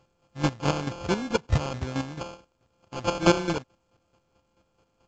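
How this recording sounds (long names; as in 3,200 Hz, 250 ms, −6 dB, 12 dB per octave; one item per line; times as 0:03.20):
a buzz of ramps at a fixed pitch in blocks of 32 samples
chopped level 4.6 Hz, depth 65%, duty 25%
aliases and images of a low sample rate 1,900 Hz, jitter 0%
mu-law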